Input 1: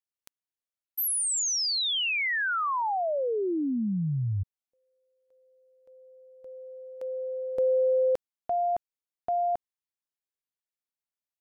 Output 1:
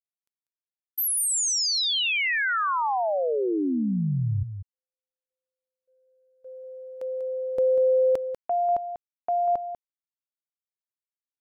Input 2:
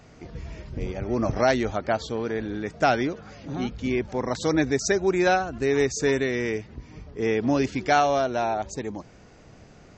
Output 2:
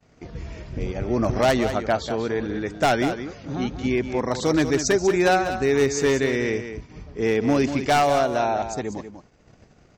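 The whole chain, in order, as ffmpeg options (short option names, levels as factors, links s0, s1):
-af "aeval=exprs='0.188*(abs(mod(val(0)/0.188+3,4)-2)-1)':c=same,agate=range=0.0224:threshold=0.00562:ratio=3:release=60:detection=peak,aecho=1:1:193:0.335,volume=1.33"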